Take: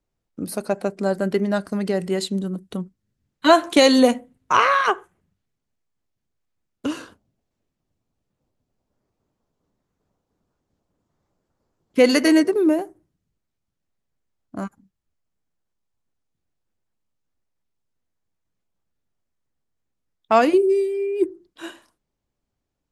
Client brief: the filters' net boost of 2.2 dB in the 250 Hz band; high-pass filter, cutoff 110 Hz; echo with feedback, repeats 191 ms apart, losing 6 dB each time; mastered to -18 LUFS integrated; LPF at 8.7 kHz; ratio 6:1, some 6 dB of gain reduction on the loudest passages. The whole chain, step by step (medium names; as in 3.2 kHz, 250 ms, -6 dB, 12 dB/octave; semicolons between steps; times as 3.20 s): high-pass 110 Hz; low-pass 8.7 kHz; peaking EQ 250 Hz +3 dB; compression 6:1, threshold -15 dBFS; feedback delay 191 ms, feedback 50%, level -6 dB; trim +4 dB